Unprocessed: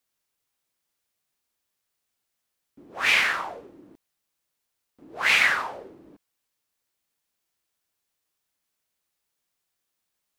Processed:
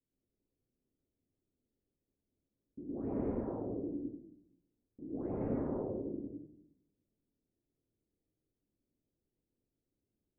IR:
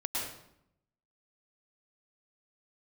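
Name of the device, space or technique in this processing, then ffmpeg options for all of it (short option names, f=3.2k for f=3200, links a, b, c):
next room: -filter_complex "[0:a]lowpass=f=390:w=0.5412,lowpass=f=390:w=1.3066[a];[1:a]atrim=start_sample=2205[b];[a][b]afir=irnorm=-1:irlink=0,volume=5.5dB"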